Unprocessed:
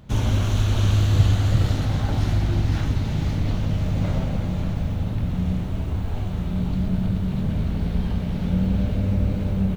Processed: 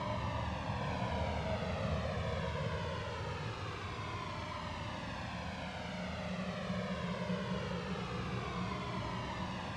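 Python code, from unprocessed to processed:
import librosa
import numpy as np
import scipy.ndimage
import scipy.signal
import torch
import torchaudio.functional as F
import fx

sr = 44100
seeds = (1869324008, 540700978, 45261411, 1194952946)

p1 = fx.peak_eq(x, sr, hz=950.0, db=12.0, octaves=0.38)
p2 = p1 + 0.64 * np.pad(p1, (int(1.8 * sr / 1000.0), 0))[:len(p1)]
p3 = 10.0 ** (-20.0 / 20.0) * np.tanh(p2 / 10.0 ** (-20.0 / 20.0))
p4 = p2 + (p3 * librosa.db_to_amplitude(-6.5))
p5 = fx.tremolo_random(p4, sr, seeds[0], hz=3.5, depth_pct=80)
p6 = fx.granulator(p5, sr, seeds[1], grain_ms=100.0, per_s=20.0, spray_ms=100.0, spread_st=0)
p7 = fx.paulstretch(p6, sr, seeds[2], factor=13.0, window_s=0.25, from_s=4.9)
p8 = fx.quant_dither(p7, sr, seeds[3], bits=6, dither='triangular')
p9 = fx.bandpass_edges(p8, sr, low_hz=250.0, high_hz=2900.0)
p10 = fx.air_absorb(p9, sr, metres=55.0)
p11 = p10 + fx.echo_single(p10, sr, ms=813, db=-4.0, dry=0)
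p12 = fx.comb_cascade(p11, sr, direction='falling', hz=0.22)
y = p12 * librosa.db_to_amplitude(1.0)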